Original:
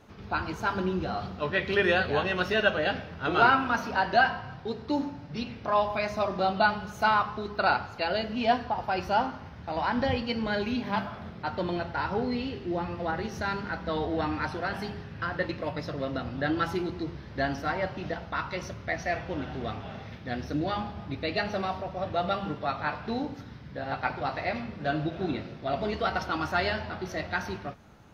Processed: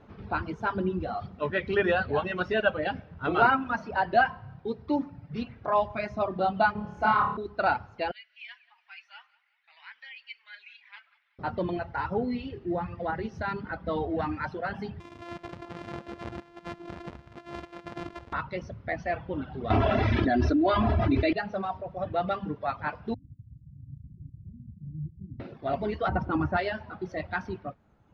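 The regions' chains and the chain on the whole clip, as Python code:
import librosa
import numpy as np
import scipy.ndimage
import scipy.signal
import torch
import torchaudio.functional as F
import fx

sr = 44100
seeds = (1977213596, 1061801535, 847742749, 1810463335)

y = fx.chain(x, sr, fx.high_shelf(hz=2100.0, db=-6.5),
    fx.room_flutter(wall_m=4.9, rt60_s=0.96), at=(6.72, 7.37))
y = fx.chain(y, sr, fx.ladder_highpass(hz=1900.0, resonance_pct=55),
    fx.echo_feedback(ms=185, feedback_pct=42, wet_db=-12.5), at=(8.11, 11.39))
y = fx.chain(y, sr, fx.sample_sort(block=128),
    fx.low_shelf(hz=450.0, db=-7.0),
    fx.over_compress(threshold_db=-38.0, ratio=-1.0), at=(15.0, 18.33))
y = fx.chain(y, sr, fx.comb(ms=3.0, depth=0.91),
    fx.env_flatten(amount_pct=100), at=(19.7, 21.33))
y = fx.chain(y, sr, fx.cheby2_lowpass(hz=720.0, order=4, stop_db=70),
    fx.echo_single(ms=348, db=-11.5), at=(23.14, 25.4))
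y = fx.chain(y, sr, fx.lowpass(hz=1800.0, slope=6),
    fx.low_shelf(hz=480.0, db=9.0), at=(26.08, 26.57))
y = scipy.signal.sosfilt(scipy.signal.butter(2, 4100.0, 'lowpass', fs=sr, output='sos'), y)
y = fx.dereverb_blind(y, sr, rt60_s=1.5)
y = fx.high_shelf(y, sr, hz=2000.0, db=-8.5)
y = y * librosa.db_to_amplitude(2.0)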